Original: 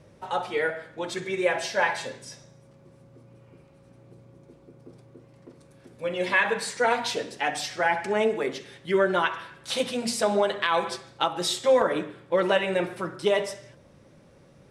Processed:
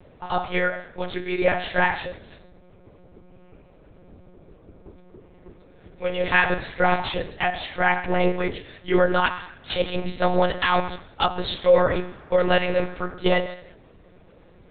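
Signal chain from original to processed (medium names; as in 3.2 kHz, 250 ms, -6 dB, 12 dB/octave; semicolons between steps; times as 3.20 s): monotone LPC vocoder at 8 kHz 180 Hz; 11.51–13.13 s: band noise 140–1600 Hz -53 dBFS; trim +3.5 dB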